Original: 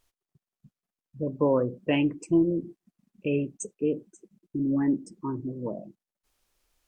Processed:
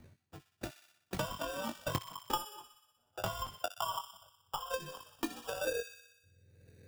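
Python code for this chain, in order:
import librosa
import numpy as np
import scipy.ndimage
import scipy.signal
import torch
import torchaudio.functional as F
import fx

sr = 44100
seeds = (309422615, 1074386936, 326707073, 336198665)

y = fx.octave_mirror(x, sr, pivot_hz=540.0)
y = fx.high_shelf(y, sr, hz=4800.0, db=-3.5)
y = fx.hum_notches(y, sr, base_hz=60, count=8)
y = fx.level_steps(y, sr, step_db=22)
y = fx.filter_sweep_lowpass(y, sr, from_hz=4100.0, to_hz=490.0, start_s=3.15, end_s=4.3, q=7.6)
y = fx.sample_hold(y, sr, seeds[0], rate_hz=2100.0, jitter_pct=0)
y = 10.0 ** (-28.0 / 20.0) * np.tanh(y / 10.0 ** (-28.0 / 20.0))
y = fx.transient(y, sr, attack_db=12, sustain_db=-2)
y = fx.doubler(y, sr, ms=21.0, db=-6.5)
y = fx.echo_wet_highpass(y, sr, ms=61, feedback_pct=53, hz=1800.0, wet_db=-8.5)
y = fx.band_squash(y, sr, depth_pct=100)
y = F.gain(torch.from_numpy(y), -3.5).numpy()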